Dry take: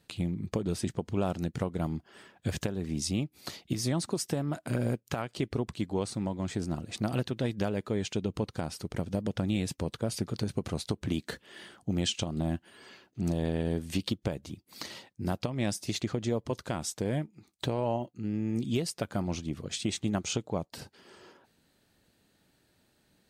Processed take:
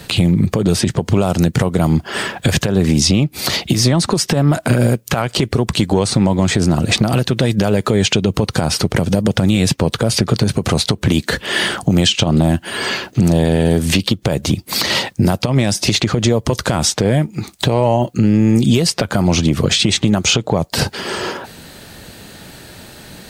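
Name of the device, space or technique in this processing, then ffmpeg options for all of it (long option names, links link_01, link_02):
mastering chain: -filter_complex "[0:a]equalizer=frequency=290:width_type=o:width=0.77:gain=-3.5,acrossover=split=100|5400[link_01][link_02][link_03];[link_01]acompressor=threshold=-51dB:ratio=4[link_04];[link_02]acompressor=threshold=-36dB:ratio=4[link_05];[link_03]acompressor=threshold=-54dB:ratio=4[link_06];[link_04][link_05][link_06]amix=inputs=3:normalize=0,acompressor=threshold=-45dB:ratio=2,asoftclip=type=tanh:threshold=-30dB,alimiter=level_in=35.5dB:limit=-1dB:release=50:level=0:latency=1,volume=-3dB"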